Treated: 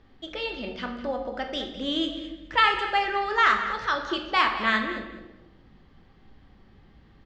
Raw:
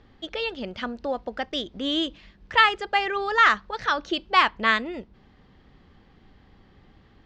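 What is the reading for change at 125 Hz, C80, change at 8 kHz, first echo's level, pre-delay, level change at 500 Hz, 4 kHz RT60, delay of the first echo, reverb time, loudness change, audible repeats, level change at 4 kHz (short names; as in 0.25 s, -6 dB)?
n/a, 8.0 dB, n/a, -13.0 dB, 3 ms, -1.5 dB, 0.85 s, 0.209 s, 1.0 s, -2.0 dB, 2, -2.0 dB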